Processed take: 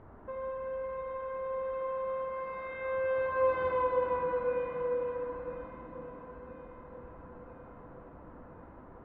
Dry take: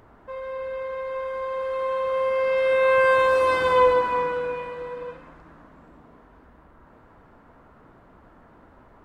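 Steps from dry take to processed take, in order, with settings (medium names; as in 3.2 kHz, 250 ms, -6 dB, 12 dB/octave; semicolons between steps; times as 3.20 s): treble shelf 2.5 kHz -11 dB; compression 2:1, threshold -37 dBFS, peak gain reduction 12.5 dB; distance through air 340 m; echo whose repeats swap between lows and highs 498 ms, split 960 Hz, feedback 75%, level -13 dB; on a send at -3 dB: reverberation RT60 3.4 s, pre-delay 10 ms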